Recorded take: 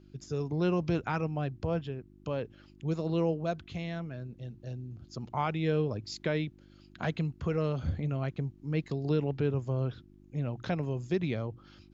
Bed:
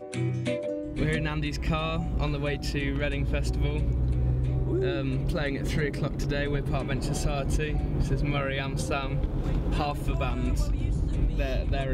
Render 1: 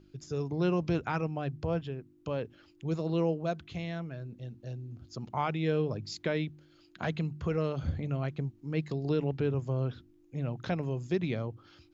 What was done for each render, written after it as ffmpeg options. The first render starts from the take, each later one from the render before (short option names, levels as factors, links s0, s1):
-af "bandreject=f=50:t=h:w=4,bandreject=f=100:t=h:w=4,bandreject=f=150:t=h:w=4,bandreject=f=200:t=h:w=4,bandreject=f=250:t=h:w=4"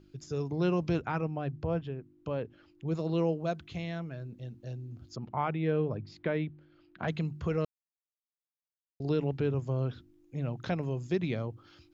-filter_complex "[0:a]asettb=1/sr,asplit=3[s0][s1][s2];[s0]atrim=end=1.024[s3];[s1]atrim=start=1.02:end=2.95,asetpts=PTS-STARTPTS,afade=t=in:d=0.004:c=qsin,afade=t=out:st=1.926:d=0.004:c=qsin,lowpass=f=2400:p=1[s4];[s2]atrim=start=2.946[s5];[s3][s4]acrossfade=d=0.004:c1=hsin:c2=qsin[s6];[s6][s5]acrossfade=d=0.004:c1=qsin:c2=hsin,asettb=1/sr,asplit=3[s7][s8][s9];[s7]atrim=end=5.164[s10];[s8]atrim=start=5.16:end=7.08,asetpts=PTS-STARTPTS,afade=t=in:d=0.004:c=qsin,afade=t=out:st=1.916:d=0.004:c=qsin,lowpass=2300[s11];[s9]atrim=start=7.076[s12];[s10][s11]acrossfade=d=0.004:c1=hsin:c2=qsin[s13];[s13][s12]acrossfade=d=0.004:c1=qsin:c2=hsin,asplit=3[s14][s15][s16];[s14]atrim=end=7.65,asetpts=PTS-STARTPTS,afade=t=out:st=7.646:d=0.004:c=hsin[s17];[s15]atrim=start=7.65:end=9,asetpts=PTS-STARTPTS,volume=0[s18];[s16]atrim=start=9,asetpts=PTS-STARTPTS,afade=t=in:d=0.004:c=hsin[s19];[s17][s18][s19]concat=n=3:v=0:a=1"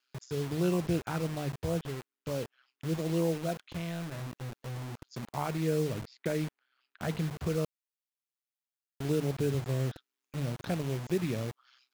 -filter_complex "[0:a]acrossover=split=900[s0][s1];[s0]acrusher=bits=6:mix=0:aa=0.000001[s2];[s1]aeval=exprs='val(0)*sin(2*PI*64*n/s)':c=same[s3];[s2][s3]amix=inputs=2:normalize=0"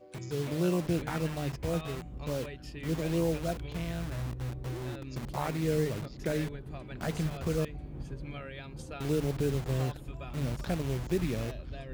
-filter_complex "[1:a]volume=0.2[s0];[0:a][s0]amix=inputs=2:normalize=0"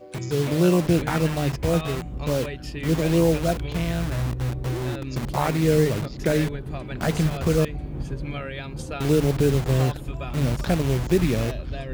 -af "volume=3.16"